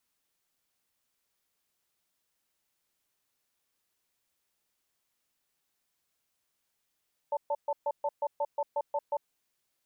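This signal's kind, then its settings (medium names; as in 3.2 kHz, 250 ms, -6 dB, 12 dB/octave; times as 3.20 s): cadence 576 Hz, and 886 Hz, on 0.05 s, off 0.13 s, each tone -29.5 dBFS 1.94 s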